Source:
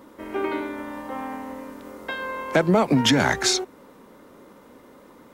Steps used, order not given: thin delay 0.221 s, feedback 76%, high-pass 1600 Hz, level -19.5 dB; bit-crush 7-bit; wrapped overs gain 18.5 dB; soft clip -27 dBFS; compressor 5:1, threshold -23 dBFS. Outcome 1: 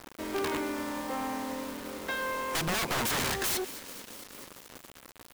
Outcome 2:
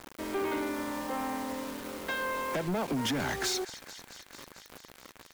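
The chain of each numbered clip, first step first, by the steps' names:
wrapped overs > compressor > thin delay > soft clip > bit-crush; compressor > bit-crush > thin delay > soft clip > wrapped overs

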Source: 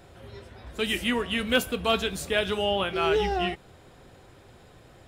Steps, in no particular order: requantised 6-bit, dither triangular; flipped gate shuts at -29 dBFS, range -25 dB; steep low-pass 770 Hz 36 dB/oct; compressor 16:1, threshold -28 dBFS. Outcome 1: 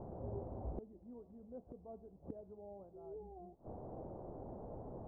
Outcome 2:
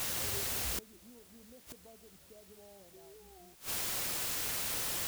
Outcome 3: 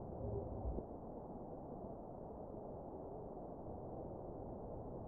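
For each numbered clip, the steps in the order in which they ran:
requantised > steep low-pass > flipped gate > compressor; steep low-pass > compressor > requantised > flipped gate; compressor > flipped gate > requantised > steep low-pass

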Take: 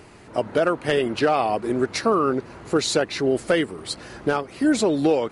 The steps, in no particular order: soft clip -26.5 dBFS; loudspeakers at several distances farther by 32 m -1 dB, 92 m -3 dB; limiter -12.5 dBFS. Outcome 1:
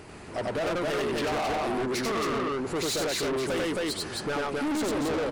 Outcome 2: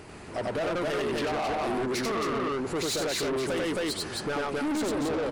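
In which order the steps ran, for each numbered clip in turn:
loudspeakers at several distances > soft clip > limiter; loudspeakers at several distances > limiter > soft clip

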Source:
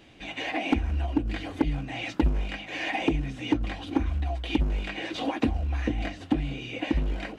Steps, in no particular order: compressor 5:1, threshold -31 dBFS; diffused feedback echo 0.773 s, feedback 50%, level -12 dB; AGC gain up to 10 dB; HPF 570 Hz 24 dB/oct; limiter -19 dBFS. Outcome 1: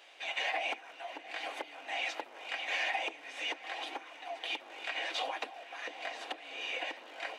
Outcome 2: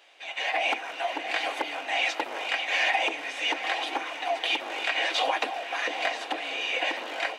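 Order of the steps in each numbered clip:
diffused feedback echo > AGC > compressor > HPF > limiter; diffused feedback echo > limiter > HPF > compressor > AGC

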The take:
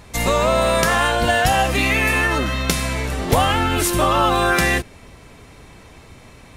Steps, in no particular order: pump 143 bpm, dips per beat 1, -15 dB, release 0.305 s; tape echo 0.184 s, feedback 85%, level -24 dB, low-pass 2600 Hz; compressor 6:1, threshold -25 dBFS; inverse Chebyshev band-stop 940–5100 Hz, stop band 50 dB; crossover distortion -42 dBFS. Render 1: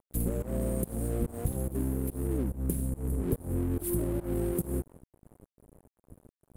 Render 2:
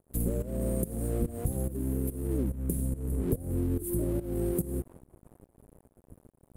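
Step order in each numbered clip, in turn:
tape echo > pump > inverse Chebyshev band-stop > compressor > crossover distortion; inverse Chebyshev band-stop > tape echo > crossover distortion > compressor > pump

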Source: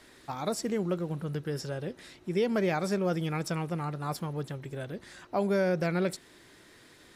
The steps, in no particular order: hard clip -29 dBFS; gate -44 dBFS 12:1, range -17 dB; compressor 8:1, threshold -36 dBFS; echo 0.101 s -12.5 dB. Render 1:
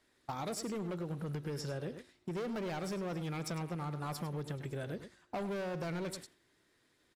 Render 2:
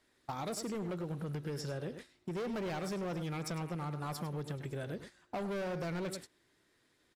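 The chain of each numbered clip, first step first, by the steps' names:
gate > hard clip > echo > compressor; echo > hard clip > gate > compressor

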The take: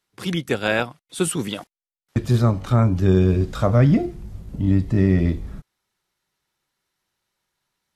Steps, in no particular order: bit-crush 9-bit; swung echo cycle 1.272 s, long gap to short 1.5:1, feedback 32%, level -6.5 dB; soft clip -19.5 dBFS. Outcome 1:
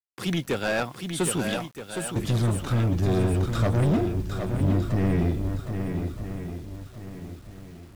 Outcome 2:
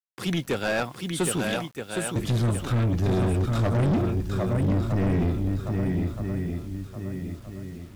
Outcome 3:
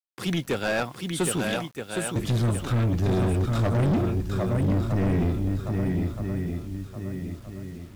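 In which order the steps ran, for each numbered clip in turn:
soft clip > swung echo > bit-crush; swung echo > bit-crush > soft clip; swung echo > soft clip > bit-crush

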